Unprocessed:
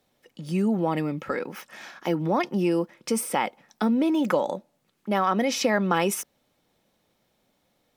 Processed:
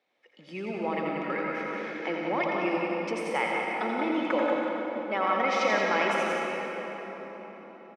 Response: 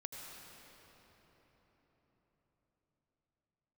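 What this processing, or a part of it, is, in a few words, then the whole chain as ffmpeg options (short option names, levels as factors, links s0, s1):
station announcement: -filter_complex "[0:a]highpass=380,lowpass=3700,equalizer=f=2200:t=o:w=0.38:g=9,aecho=1:1:84.55|180.8:0.501|0.501[s0];[1:a]atrim=start_sample=2205[s1];[s0][s1]afir=irnorm=-1:irlink=0"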